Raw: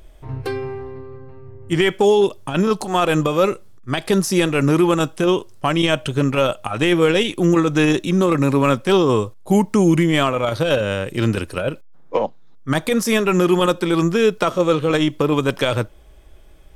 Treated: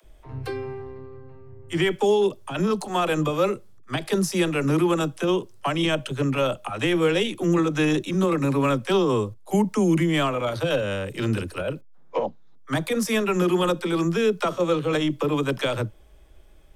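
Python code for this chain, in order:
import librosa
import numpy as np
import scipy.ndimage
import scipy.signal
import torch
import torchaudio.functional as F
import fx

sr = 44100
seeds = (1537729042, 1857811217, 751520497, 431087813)

y = fx.dispersion(x, sr, late='lows', ms=46.0, hz=320.0)
y = y * 10.0 ** (-5.5 / 20.0)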